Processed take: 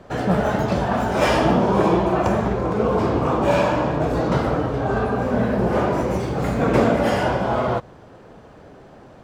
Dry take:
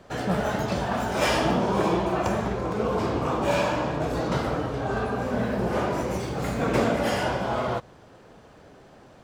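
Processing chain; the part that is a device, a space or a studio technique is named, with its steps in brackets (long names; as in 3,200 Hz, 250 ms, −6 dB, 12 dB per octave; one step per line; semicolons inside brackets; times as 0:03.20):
behind a face mask (high-shelf EQ 2,200 Hz −8 dB)
level +6.5 dB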